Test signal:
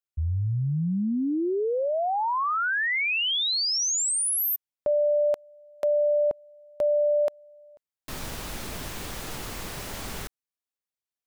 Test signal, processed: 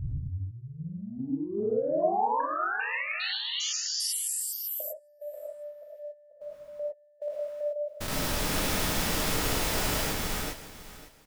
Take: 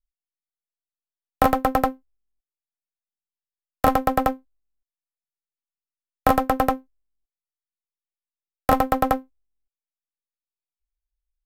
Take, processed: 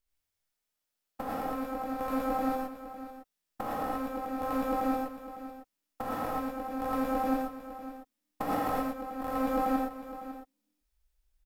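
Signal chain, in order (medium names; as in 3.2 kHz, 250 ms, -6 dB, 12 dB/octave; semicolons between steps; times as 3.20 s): spectrogram pixelated in time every 400 ms; feedback delay 553 ms, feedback 22%, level -15 dB; compressor with a negative ratio -34 dBFS, ratio -0.5; gated-style reverb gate 140 ms rising, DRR -3 dB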